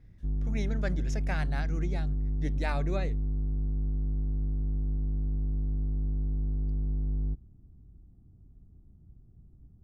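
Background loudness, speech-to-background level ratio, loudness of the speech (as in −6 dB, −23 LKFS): −33.0 LKFS, −4.5 dB, −37.5 LKFS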